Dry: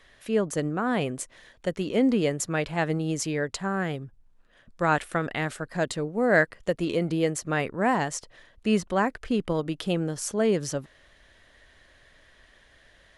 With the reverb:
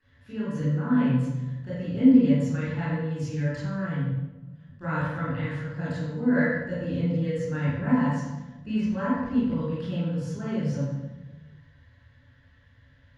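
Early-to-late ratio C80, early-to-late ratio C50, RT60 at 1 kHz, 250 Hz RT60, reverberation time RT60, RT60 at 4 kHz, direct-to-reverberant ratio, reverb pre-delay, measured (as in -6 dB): 0.0 dB, -3.0 dB, 1.0 s, 1.5 s, 1.1 s, 0.80 s, -10.5 dB, 19 ms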